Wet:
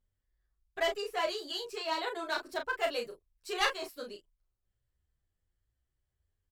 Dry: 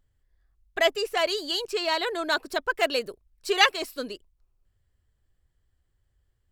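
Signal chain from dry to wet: dynamic EQ 920 Hz, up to +5 dB, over -37 dBFS, Q 1.2; one-sided clip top -16 dBFS; doubler 34 ms -6 dB; endless flanger 9.6 ms +0.94 Hz; gain -7.5 dB

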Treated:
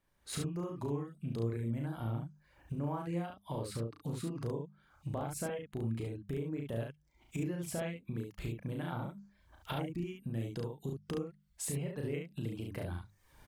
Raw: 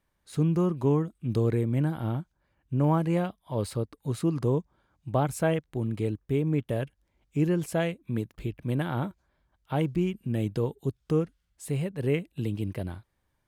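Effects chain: recorder AGC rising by 28 dB/s; reverb removal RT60 0.66 s; notches 50/100/150/200 Hz; compressor 3:1, threshold -35 dBFS, peak gain reduction 11.5 dB; loudspeakers at several distances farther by 12 m -4 dB, 24 m -4 dB; 3.65–4.19 Doppler distortion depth 0.3 ms; gain -4 dB

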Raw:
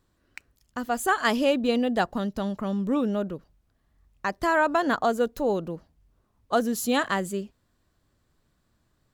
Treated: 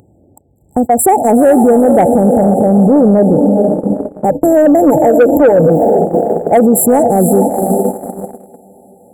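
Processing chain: Wiener smoothing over 9 samples; brick-wall FIR band-stop 890–7300 Hz; dynamic EQ 240 Hz, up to -5 dB, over -37 dBFS, Q 2.2; HPF 73 Hz 24 dB/oct; diffused feedback echo 0.455 s, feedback 51%, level -9.5 dB; upward compressor, threshold -28 dBFS; gate -34 dBFS, range -29 dB; 4.29–5.7 ripple EQ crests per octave 1.1, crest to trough 16 dB; soft clip -18.5 dBFS, distortion -15 dB; maximiser +29.5 dB; gain -1 dB

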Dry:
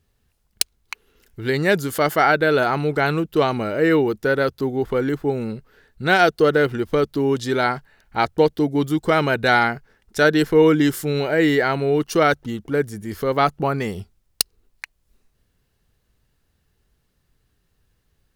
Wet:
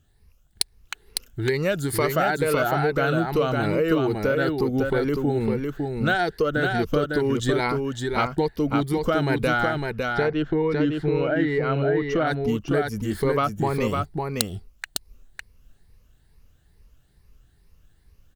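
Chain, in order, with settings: moving spectral ripple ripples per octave 0.86, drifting +2.3 Hz, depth 11 dB; low shelf 91 Hz +11 dB; compressor 6:1, threshold -20 dBFS, peak gain reduction 12 dB; 9.72–12.27 air absorption 260 m; echo 0.555 s -4 dB

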